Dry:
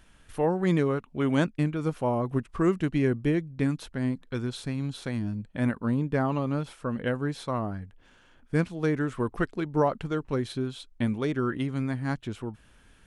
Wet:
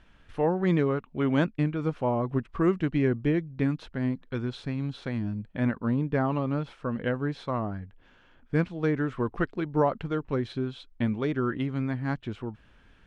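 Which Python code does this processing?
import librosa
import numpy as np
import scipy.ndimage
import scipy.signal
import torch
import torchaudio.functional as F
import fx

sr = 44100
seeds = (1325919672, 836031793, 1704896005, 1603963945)

y = scipy.signal.sosfilt(scipy.signal.butter(2, 3700.0, 'lowpass', fs=sr, output='sos'), x)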